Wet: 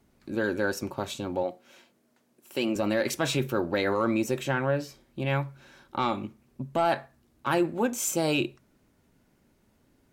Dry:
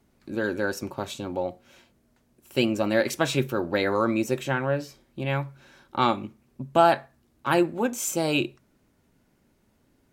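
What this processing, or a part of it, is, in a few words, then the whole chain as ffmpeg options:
soft clipper into limiter: -filter_complex "[0:a]asoftclip=type=tanh:threshold=0.355,alimiter=limit=0.158:level=0:latency=1:release=39,asettb=1/sr,asplit=3[s0][s1][s2];[s0]atrim=end=1.434[s3];[s1]atrim=start=1.43:end=2.76,asetpts=PTS-STARTPTS,afade=t=in:d=0.004:c=qsin,afade=t=out:st=1.326:d=0.004:c=qsin,highpass=220[s4];[s2]atrim=start=2.756[s5];[s3][s4]acrossfade=d=0.004:c1=hsin:c2=qsin[s6];[s6][s5]acrossfade=d=0.004:c1=qsin:c2=hsin"

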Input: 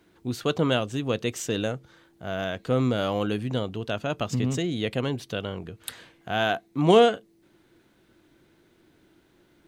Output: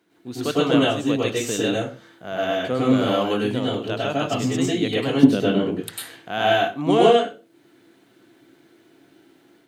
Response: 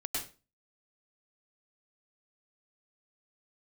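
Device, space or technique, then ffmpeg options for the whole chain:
far laptop microphone: -filter_complex "[1:a]atrim=start_sample=2205[s0];[0:a][s0]afir=irnorm=-1:irlink=0,highpass=170,dynaudnorm=f=240:g=3:m=1.78,asettb=1/sr,asplit=3[s1][s2][s3];[s1]atrim=end=5.234[s4];[s2]atrim=start=5.23:end=5.82,asetpts=PTS-STARTPTS,afade=t=in:d=0.004:c=qsin,afade=t=out:st=0.586:d=0.004:c=qsin,equalizer=f=240:w=0.82:g=14[s5];[s3]atrim=start=5.816[s6];[s4][s5]acrossfade=d=0.004:c1=hsin:c2=qsin[s7];[s7][s6]acrossfade=d=0.004:c1=qsin:c2=hsin,volume=0.794"

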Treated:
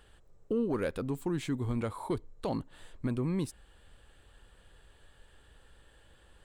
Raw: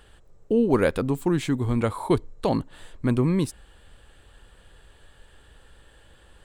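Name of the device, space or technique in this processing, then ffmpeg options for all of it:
soft clipper into limiter: -af "asoftclip=type=tanh:threshold=0.282,alimiter=limit=0.15:level=0:latency=1:release=389,volume=0.473"

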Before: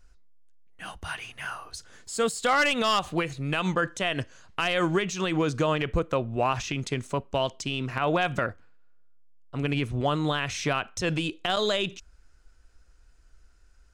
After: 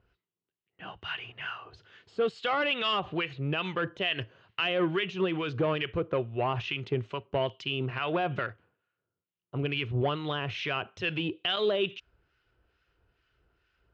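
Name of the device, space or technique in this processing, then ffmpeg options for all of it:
guitar amplifier with harmonic tremolo: -filter_complex "[0:a]acrossover=split=1200[s0][s1];[s0]aeval=exprs='val(0)*(1-0.7/2+0.7/2*cos(2*PI*2.3*n/s))':c=same[s2];[s1]aeval=exprs='val(0)*(1-0.7/2-0.7/2*cos(2*PI*2.3*n/s))':c=same[s3];[s2][s3]amix=inputs=2:normalize=0,asoftclip=type=tanh:threshold=0.0891,highpass=94,equalizer=f=110:t=q:w=4:g=7,equalizer=f=250:t=q:w=4:g=-4,equalizer=f=390:t=q:w=4:g=7,equalizer=f=2900:t=q:w=4:g=7,lowpass=f=3700:w=0.5412,lowpass=f=3700:w=1.3066"

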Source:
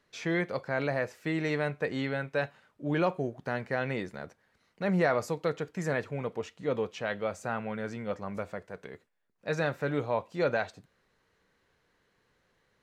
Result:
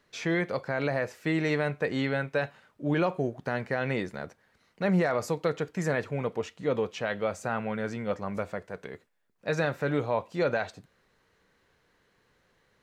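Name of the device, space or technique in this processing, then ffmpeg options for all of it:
clipper into limiter: -af "asoftclip=type=hard:threshold=0.178,alimiter=limit=0.0944:level=0:latency=1:release=76,volume=1.5"

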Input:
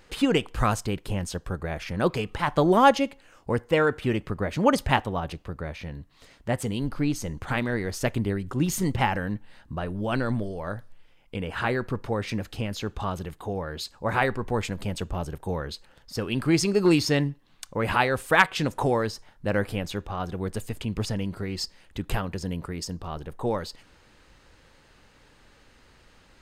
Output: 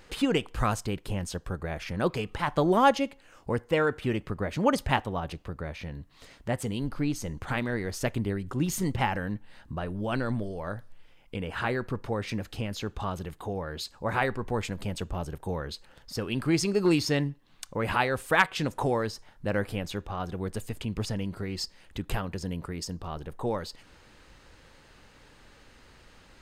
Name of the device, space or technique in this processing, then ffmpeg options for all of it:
parallel compression: -filter_complex "[0:a]asplit=2[s0][s1];[s1]acompressor=threshold=0.00794:ratio=6,volume=0.891[s2];[s0][s2]amix=inputs=2:normalize=0,volume=0.631"

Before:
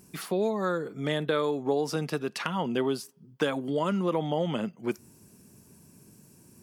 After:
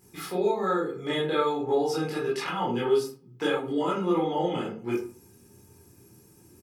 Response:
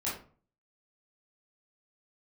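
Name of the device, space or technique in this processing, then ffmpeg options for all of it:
microphone above a desk: -filter_complex "[0:a]aecho=1:1:2.4:0.55[s0];[1:a]atrim=start_sample=2205[s1];[s0][s1]afir=irnorm=-1:irlink=0,volume=0.631"

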